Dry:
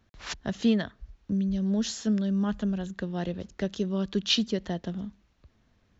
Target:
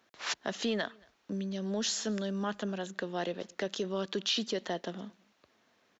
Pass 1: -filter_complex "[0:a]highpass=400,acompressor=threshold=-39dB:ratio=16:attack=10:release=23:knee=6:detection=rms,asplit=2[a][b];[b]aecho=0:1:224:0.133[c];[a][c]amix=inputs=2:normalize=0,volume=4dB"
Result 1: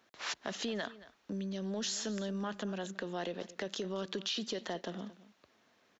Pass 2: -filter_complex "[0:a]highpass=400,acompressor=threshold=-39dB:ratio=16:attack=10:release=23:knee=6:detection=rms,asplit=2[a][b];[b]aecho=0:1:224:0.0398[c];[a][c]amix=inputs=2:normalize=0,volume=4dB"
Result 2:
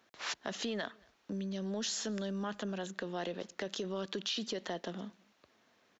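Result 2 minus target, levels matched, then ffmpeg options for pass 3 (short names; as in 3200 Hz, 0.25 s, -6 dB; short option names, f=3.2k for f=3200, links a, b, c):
compressor: peak gain reduction +6 dB
-filter_complex "[0:a]highpass=400,acompressor=threshold=-32.5dB:ratio=16:attack=10:release=23:knee=6:detection=rms,asplit=2[a][b];[b]aecho=0:1:224:0.0398[c];[a][c]amix=inputs=2:normalize=0,volume=4dB"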